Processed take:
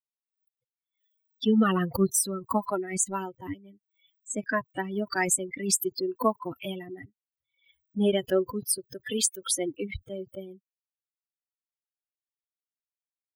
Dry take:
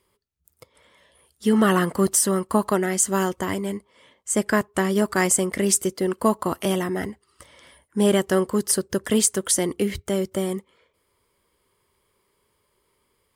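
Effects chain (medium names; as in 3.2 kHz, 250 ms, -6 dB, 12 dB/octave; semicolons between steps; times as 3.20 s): expander on every frequency bin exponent 3; 8.78–9.59 s: bass shelf 280 Hz -11.5 dB; swell ahead of each attack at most 120 dB/s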